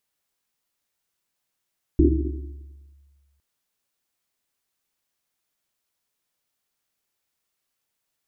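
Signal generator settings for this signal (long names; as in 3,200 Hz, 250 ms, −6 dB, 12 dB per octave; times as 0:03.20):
drum after Risset length 1.41 s, pitch 70 Hz, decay 1.73 s, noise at 320 Hz, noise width 110 Hz, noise 50%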